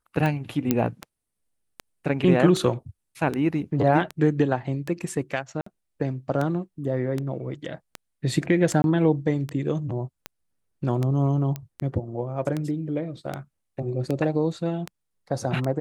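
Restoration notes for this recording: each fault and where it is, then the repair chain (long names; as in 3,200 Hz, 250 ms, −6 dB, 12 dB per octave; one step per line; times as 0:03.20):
scratch tick 78 rpm −15 dBFS
0:00.71: click −7 dBFS
0:05.61–0:05.66: drop-out 54 ms
0:08.82–0:08.84: drop-out 21 ms
0:11.56: click −17 dBFS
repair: click removal
repair the gap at 0:05.61, 54 ms
repair the gap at 0:08.82, 21 ms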